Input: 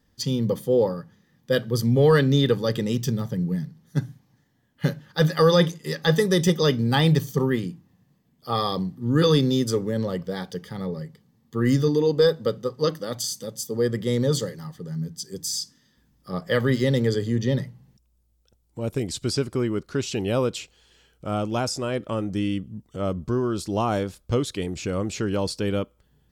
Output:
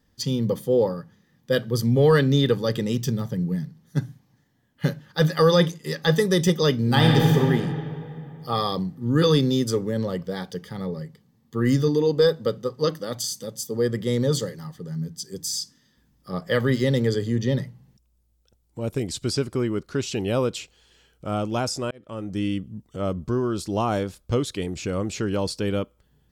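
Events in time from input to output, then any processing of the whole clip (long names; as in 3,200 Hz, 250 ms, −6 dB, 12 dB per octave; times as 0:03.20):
0:06.78–0:07.32: thrown reverb, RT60 2.8 s, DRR −1 dB
0:21.91–0:22.45: fade in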